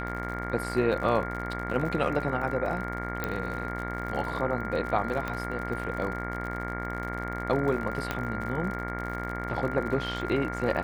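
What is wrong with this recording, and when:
buzz 60 Hz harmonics 38 -35 dBFS
crackle 63/s -35 dBFS
tone 1400 Hz -36 dBFS
3.24 pop -15 dBFS
5.28 pop -19 dBFS
8.11 pop -14 dBFS

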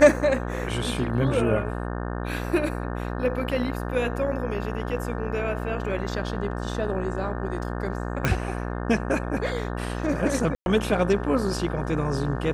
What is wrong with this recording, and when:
buzz 60 Hz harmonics 30 -30 dBFS
8.25 pop -9 dBFS
10.55–10.66 gap 0.111 s

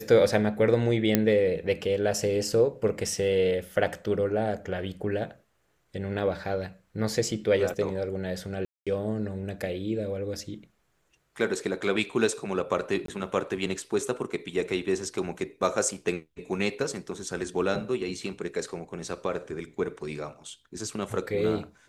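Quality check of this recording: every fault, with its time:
1.15 pop -6 dBFS
8.65–8.87 gap 0.216 s
13.06–13.08 gap 23 ms

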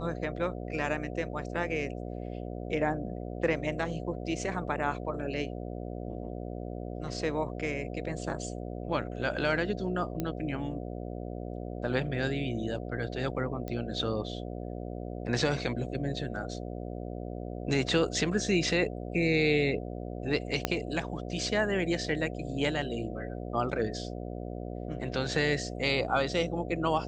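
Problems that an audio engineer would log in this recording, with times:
buzz 60 Hz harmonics 12 -38 dBFS
10.2 pop -18 dBFS
13.68 pop -23 dBFS
20.65 pop -11 dBFS

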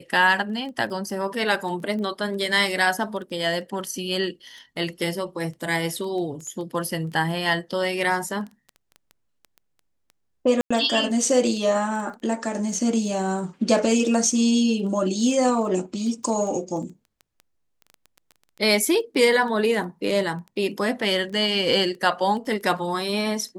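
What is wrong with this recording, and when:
crackle 10/s -32 dBFS
10.61–10.71 gap 95 ms

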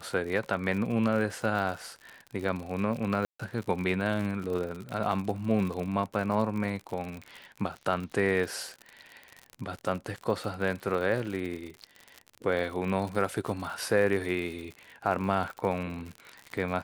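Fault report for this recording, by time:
crackle 69/s -34 dBFS
3.25–3.4 gap 0.145 s

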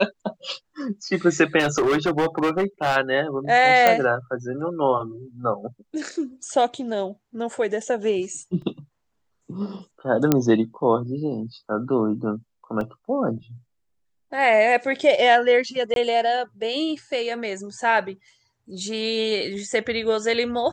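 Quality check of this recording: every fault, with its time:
1.59–2.97 clipped -17 dBFS
3.87 pop -3 dBFS
8.62 gap 3.1 ms
10.32 pop -3 dBFS
12.81 gap 2.1 ms
15.94–15.96 gap 22 ms

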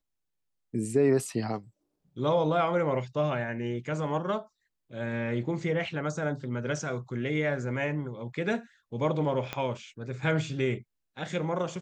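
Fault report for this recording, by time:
9.53 pop -17 dBFS

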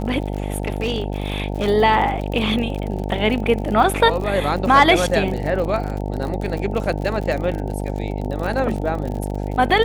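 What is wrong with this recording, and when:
buzz 50 Hz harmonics 18 -25 dBFS
crackle 50/s -26 dBFS
0.56–1.68 clipped -16 dBFS

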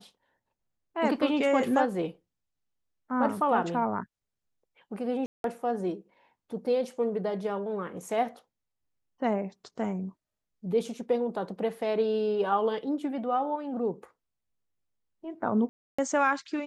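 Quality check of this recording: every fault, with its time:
5.26–5.44 gap 0.182 s
15.69–15.98 gap 0.295 s

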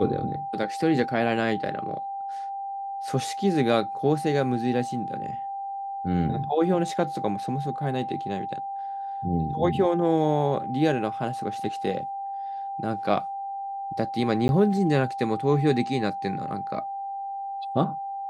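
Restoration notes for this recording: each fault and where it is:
tone 790 Hz -30 dBFS
14.48–14.49 gap 11 ms

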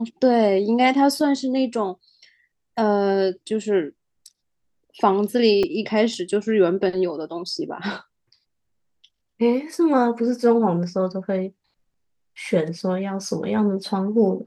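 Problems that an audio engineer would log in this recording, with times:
5.63 gap 4.3 ms

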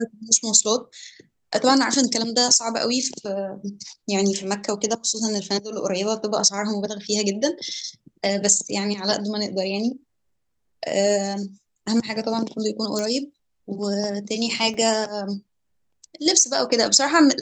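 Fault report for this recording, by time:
12.99 pop -13 dBFS
14.74 gap 3.3 ms

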